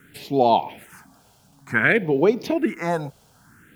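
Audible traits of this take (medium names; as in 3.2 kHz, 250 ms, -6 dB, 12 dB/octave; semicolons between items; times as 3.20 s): a quantiser's noise floor 10-bit, dither none; phasing stages 4, 0.55 Hz, lowest notch 290–1700 Hz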